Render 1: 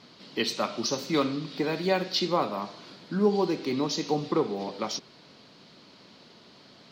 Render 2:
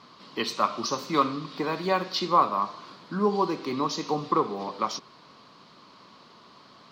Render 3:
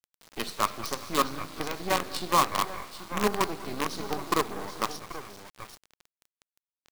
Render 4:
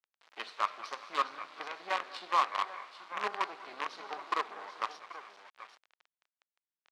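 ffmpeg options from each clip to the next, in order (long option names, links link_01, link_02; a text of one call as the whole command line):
ffmpeg -i in.wav -af "equalizer=frequency=1100:width_type=o:width=0.49:gain=14.5,volume=-2dB" out.wav
ffmpeg -i in.wav -af "aecho=1:1:200|397|432|784:0.224|0.133|0.106|0.316,acrusher=bits=4:dc=4:mix=0:aa=0.000001,volume=-2.5dB" out.wav
ffmpeg -i in.wav -af "highpass=780,lowpass=3000,volume=-3dB" out.wav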